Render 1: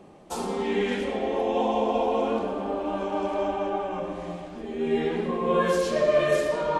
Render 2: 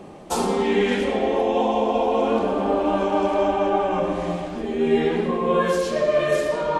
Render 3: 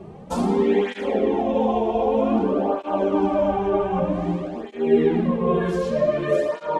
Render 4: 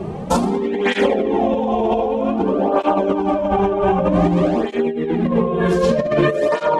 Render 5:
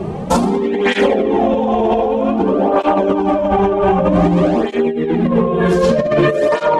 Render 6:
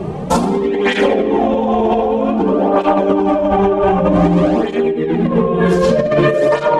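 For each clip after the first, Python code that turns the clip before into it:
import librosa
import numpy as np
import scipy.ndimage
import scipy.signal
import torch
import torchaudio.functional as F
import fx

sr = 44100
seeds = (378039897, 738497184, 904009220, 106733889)

y1 = fx.rider(x, sr, range_db=4, speed_s=0.5)
y1 = y1 * librosa.db_to_amplitude(5.0)
y2 = fx.tilt_eq(y1, sr, slope=-2.5)
y2 = fx.flanger_cancel(y2, sr, hz=0.53, depth_ms=4.0)
y3 = fx.over_compress(y2, sr, threshold_db=-26.0, ratio=-1.0)
y3 = y3 * librosa.db_to_amplitude(8.5)
y4 = 10.0 ** (-7.0 / 20.0) * np.tanh(y3 / 10.0 ** (-7.0 / 20.0))
y4 = y4 * librosa.db_to_amplitude(4.0)
y5 = fx.room_shoebox(y4, sr, seeds[0], volume_m3=1400.0, walls='mixed', distance_m=0.42)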